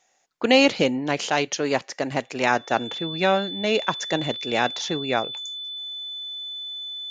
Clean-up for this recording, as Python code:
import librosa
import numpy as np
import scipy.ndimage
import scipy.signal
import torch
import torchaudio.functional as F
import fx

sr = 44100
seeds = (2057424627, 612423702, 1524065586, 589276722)

y = fx.notch(x, sr, hz=3500.0, q=30.0)